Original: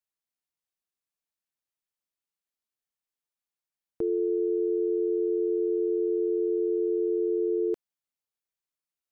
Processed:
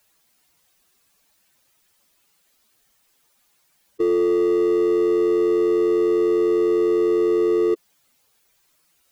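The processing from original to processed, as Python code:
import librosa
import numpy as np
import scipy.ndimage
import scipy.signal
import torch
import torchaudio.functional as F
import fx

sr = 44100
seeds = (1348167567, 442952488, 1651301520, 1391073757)

y = fx.spec_expand(x, sr, power=1.8)
y = fx.power_curve(y, sr, exponent=0.7)
y = y * 10.0 ** (7.0 / 20.0)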